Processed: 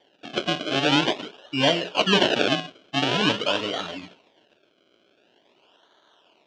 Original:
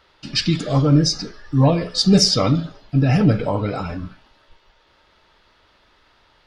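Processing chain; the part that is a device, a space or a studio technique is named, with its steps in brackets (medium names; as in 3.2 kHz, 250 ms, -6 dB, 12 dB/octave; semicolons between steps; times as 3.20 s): circuit-bent sampling toy (decimation with a swept rate 33×, swing 100% 0.46 Hz; cabinet simulation 460–4900 Hz, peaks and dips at 500 Hz -6 dB, 830 Hz -6 dB, 1.2 kHz -9 dB, 2 kHz -9 dB, 3 kHz +8 dB, 4.6 kHz -4 dB); trim +3.5 dB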